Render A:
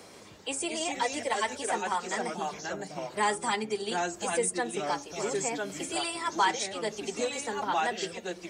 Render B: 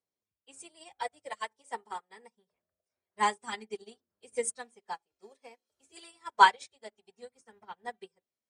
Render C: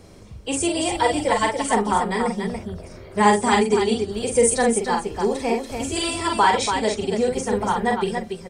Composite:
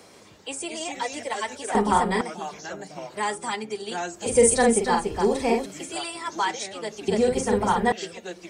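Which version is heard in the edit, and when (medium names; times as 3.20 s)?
A
1.75–2.21 s: from C
4.26–5.66 s: from C
7.08–7.92 s: from C
not used: B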